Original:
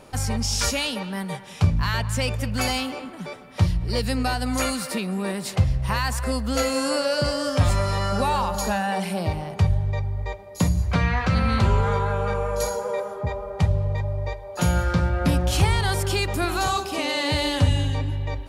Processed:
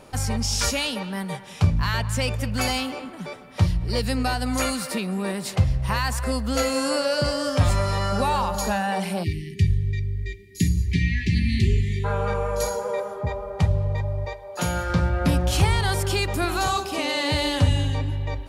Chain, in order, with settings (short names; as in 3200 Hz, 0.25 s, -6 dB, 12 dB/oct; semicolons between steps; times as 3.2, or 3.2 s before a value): 9.24–12.05 spectral delete 430–1700 Hz; 14.25–14.9 low shelf 180 Hz -9 dB